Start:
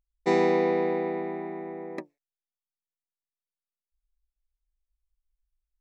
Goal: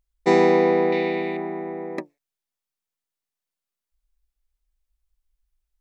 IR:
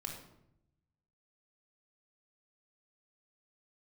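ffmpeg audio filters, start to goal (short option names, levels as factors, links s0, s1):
-filter_complex "[0:a]asettb=1/sr,asplit=3[s0][s1][s2];[s0]atrim=end=0.924[s3];[s1]atrim=start=0.92:end=1.37,asetpts=PTS-STARTPTS,afade=t=in:d=0.004:c=qsin,afade=t=out:st=0.446:d=0.004:c=qsin,highshelf=f=2000:t=q:w=1.5:g=12[s4];[s2]atrim=start=1.366[s5];[s3][s4]acrossfade=d=0.004:c1=hsin:c2=qsin[s6];[s6][s5]acrossfade=d=0.004:c1=qsin:c2=hsin,volume=2"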